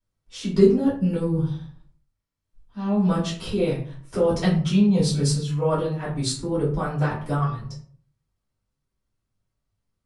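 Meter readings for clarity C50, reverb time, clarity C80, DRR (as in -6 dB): 6.0 dB, 0.50 s, 10.5 dB, -9.0 dB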